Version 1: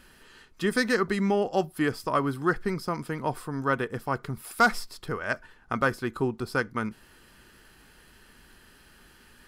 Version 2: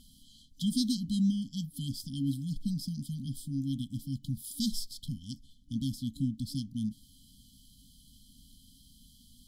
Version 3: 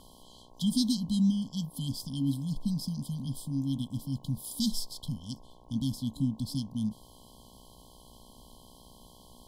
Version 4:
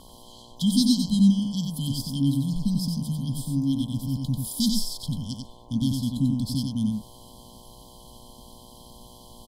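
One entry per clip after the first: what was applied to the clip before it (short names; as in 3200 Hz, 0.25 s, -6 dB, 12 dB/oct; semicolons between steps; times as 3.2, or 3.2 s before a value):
FFT band-reject 290–3000 Hz
buzz 60 Hz, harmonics 18, -61 dBFS 0 dB/oct; gain +2 dB
echo 92 ms -4.5 dB; gain +5.5 dB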